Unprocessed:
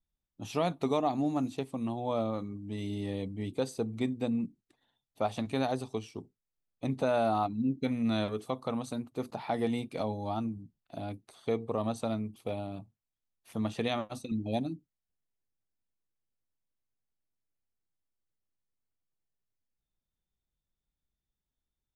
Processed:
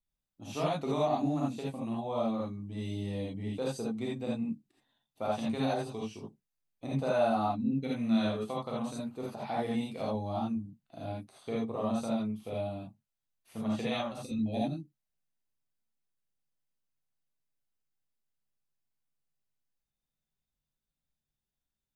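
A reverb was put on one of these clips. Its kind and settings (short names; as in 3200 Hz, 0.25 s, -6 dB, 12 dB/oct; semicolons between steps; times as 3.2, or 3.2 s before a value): non-linear reverb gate 0.1 s rising, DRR -5.5 dB; gain -7 dB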